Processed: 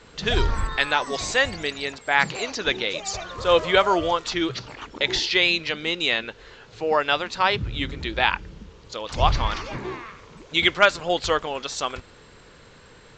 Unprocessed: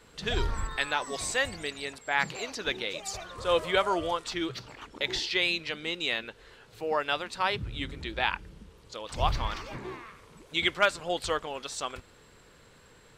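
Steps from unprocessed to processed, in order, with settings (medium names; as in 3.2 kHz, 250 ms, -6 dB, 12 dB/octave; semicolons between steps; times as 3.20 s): resampled via 16 kHz; trim +7.5 dB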